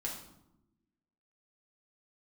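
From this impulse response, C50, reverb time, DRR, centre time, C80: 5.0 dB, 0.90 s, −2.5 dB, 33 ms, 8.5 dB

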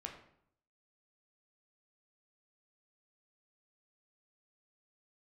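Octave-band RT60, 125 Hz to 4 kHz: 0.80, 0.80, 0.70, 0.65, 0.55, 0.50 seconds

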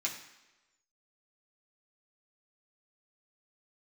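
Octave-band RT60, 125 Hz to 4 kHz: 0.80, 0.95, 1.1, 1.1, 1.1, 1.0 seconds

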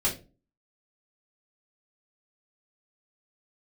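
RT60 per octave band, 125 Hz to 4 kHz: 0.45, 0.50, 0.35, 0.25, 0.25, 0.25 seconds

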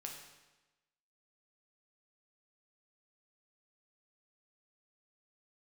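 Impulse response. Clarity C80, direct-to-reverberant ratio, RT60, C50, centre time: 6.5 dB, 0.5 dB, 1.1 s, 4.5 dB, 40 ms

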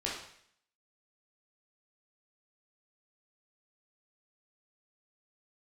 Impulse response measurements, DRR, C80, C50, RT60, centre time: −5.0 dB, 6.5 dB, 2.5 dB, 0.65 s, 47 ms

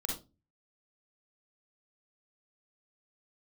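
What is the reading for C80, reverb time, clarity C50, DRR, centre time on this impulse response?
12.0 dB, 0.25 s, 3.5 dB, −1.0 dB, 32 ms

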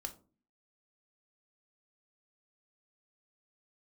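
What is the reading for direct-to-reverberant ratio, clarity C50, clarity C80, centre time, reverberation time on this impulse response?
5.5 dB, 15.0 dB, 20.0 dB, 7 ms, 0.40 s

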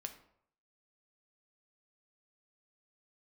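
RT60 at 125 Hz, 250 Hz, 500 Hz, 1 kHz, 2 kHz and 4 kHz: 0.70, 0.60, 0.70, 0.70, 0.55, 0.40 seconds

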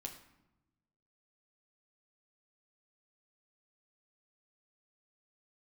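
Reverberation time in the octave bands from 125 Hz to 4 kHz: 1.6, 1.4, 0.90, 0.90, 0.75, 0.60 seconds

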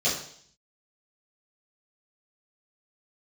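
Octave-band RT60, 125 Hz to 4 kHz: 0.80, 0.65, 0.60, 0.60, 0.60, 0.70 seconds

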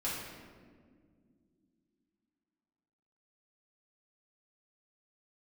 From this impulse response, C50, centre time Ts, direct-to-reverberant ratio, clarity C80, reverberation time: 0.0 dB, 88 ms, −8.0 dB, 2.5 dB, non-exponential decay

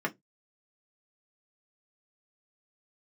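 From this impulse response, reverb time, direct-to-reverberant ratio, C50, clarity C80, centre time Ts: 0.15 s, −0.5 dB, 27.0 dB, 36.0 dB, 6 ms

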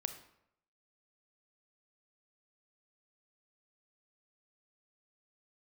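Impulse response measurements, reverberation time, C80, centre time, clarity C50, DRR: 0.75 s, 13.0 dB, 11 ms, 10.5 dB, 8.0 dB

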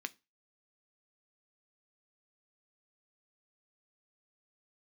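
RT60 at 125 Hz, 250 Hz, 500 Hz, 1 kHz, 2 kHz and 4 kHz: 0.30, 0.30, 0.25, 0.25, 0.25, 0.25 seconds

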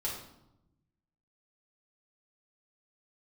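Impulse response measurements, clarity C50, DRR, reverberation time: 4.0 dB, −5.0 dB, 0.85 s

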